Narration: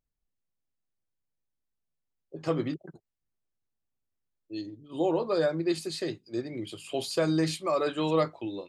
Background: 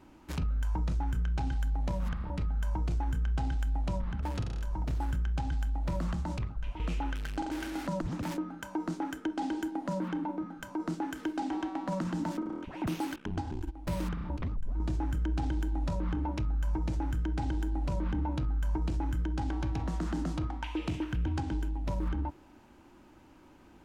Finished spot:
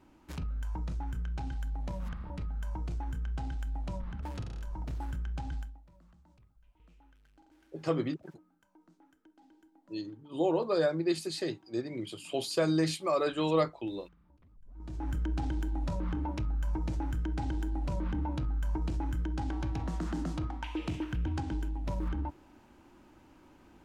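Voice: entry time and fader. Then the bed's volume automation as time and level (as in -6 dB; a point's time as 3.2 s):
5.40 s, -1.5 dB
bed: 5.59 s -5 dB
5.87 s -28.5 dB
14.47 s -28.5 dB
15.09 s -1.5 dB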